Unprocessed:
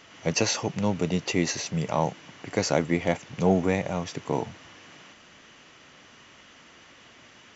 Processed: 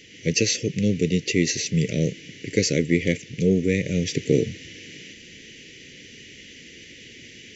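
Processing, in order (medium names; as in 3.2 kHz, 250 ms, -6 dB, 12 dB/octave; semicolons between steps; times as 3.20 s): elliptic band-stop 460–2000 Hz, stop band 60 dB; gain riding 0.5 s; trim +6 dB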